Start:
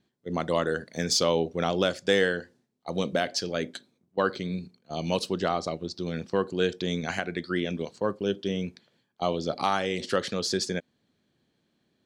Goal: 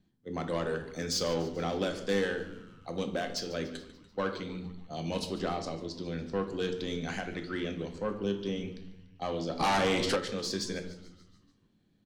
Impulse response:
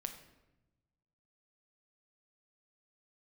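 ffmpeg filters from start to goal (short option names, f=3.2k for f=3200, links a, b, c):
-filter_complex "[0:a]acrossover=split=210[a][b];[a]acompressor=mode=upward:threshold=-57dB:ratio=2.5[c];[b]asoftclip=type=tanh:threshold=-20.5dB[d];[c][d]amix=inputs=2:normalize=0,asplit=7[e][f][g][h][i][j][k];[f]adelay=145,afreqshift=-93,volume=-17dB[l];[g]adelay=290,afreqshift=-186,volume=-21.6dB[m];[h]adelay=435,afreqshift=-279,volume=-26.2dB[n];[i]adelay=580,afreqshift=-372,volume=-30.7dB[o];[j]adelay=725,afreqshift=-465,volume=-35.3dB[p];[k]adelay=870,afreqshift=-558,volume=-39.9dB[q];[e][l][m][n][o][p][q]amix=inputs=7:normalize=0[r];[1:a]atrim=start_sample=2205,asetrate=70560,aresample=44100[s];[r][s]afir=irnorm=-1:irlink=0,asplit=3[t][u][v];[t]afade=t=out:st=9.59:d=0.02[w];[u]aeval=exprs='0.0794*(cos(1*acos(clip(val(0)/0.0794,-1,1)))-cos(1*PI/2))+0.0355*(cos(5*acos(clip(val(0)/0.0794,-1,1)))-cos(5*PI/2))':c=same,afade=t=in:st=9.59:d=0.02,afade=t=out:st=10.15:d=0.02[x];[v]afade=t=in:st=10.15:d=0.02[y];[w][x][y]amix=inputs=3:normalize=0,volume=1.5dB"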